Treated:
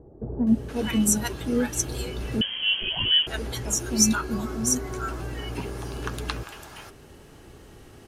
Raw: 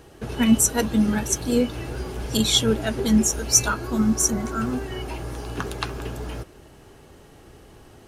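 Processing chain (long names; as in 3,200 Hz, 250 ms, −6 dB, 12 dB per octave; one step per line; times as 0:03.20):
in parallel at −2 dB: downward compressor, threshold −31 dBFS, peak gain reduction 18.5 dB
on the sum: multiband delay without the direct sound lows, highs 470 ms, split 730 Hz
0:02.41–0:03.27: voice inversion scrambler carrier 3,200 Hz
level −4.5 dB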